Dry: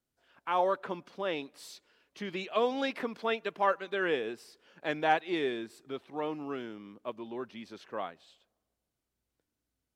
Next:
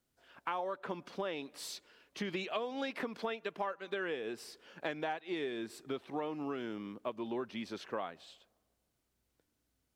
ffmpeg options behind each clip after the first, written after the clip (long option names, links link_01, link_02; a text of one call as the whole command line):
ffmpeg -i in.wav -af "acompressor=threshold=-38dB:ratio=16,volume=4.5dB" out.wav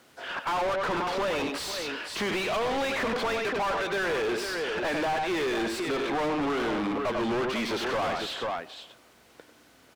ffmpeg -i in.wav -filter_complex "[0:a]aecho=1:1:96|494:0.266|0.2,asplit=2[link_01][link_02];[link_02]highpass=frequency=720:poles=1,volume=38dB,asoftclip=type=tanh:threshold=-20.5dB[link_03];[link_01][link_03]amix=inputs=2:normalize=0,lowpass=frequency=2100:poles=1,volume=-6dB" out.wav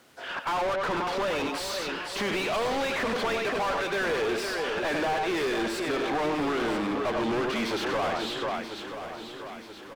ffmpeg -i in.wav -af "aecho=1:1:981|1962|2943|3924|4905:0.299|0.149|0.0746|0.0373|0.0187" out.wav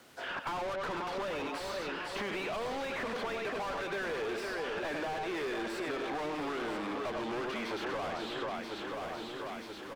ffmpeg -i in.wav -filter_complex "[0:a]acrossover=split=370|2700[link_01][link_02][link_03];[link_01]acompressor=threshold=-44dB:ratio=4[link_04];[link_02]acompressor=threshold=-37dB:ratio=4[link_05];[link_03]acompressor=threshold=-51dB:ratio=4[link_06];[link_04][link_05][link_06]amix=inputs=3:normalize=0" out.wav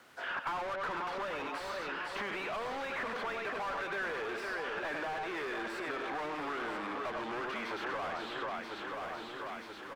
ffmpeg -i in.wav -af "equalizer=frequency=1400:width=0.7:gain=8,volume=-5.5dB" out.wav